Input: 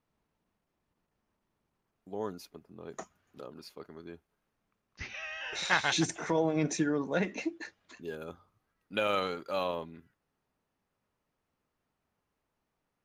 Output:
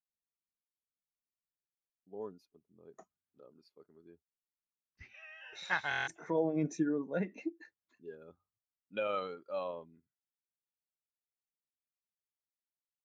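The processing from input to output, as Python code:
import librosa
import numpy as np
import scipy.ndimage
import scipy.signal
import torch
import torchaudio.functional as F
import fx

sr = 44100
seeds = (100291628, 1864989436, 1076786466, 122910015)

y = fx.buffer_glitch(x, sr, at_s=(5.89,), block=1024, repeats=7)
y = fx.spectral_expand(y, sr, expansion=1.5)
y = y * 10.0 ** (-5.5 / 20.0)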